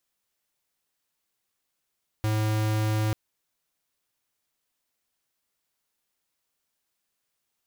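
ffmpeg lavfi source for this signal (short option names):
-f lavfi -i "aevalsrc='0.0562*(2*lt(mod(108*t,1),0.5)-1)':d=0.89:s=44100"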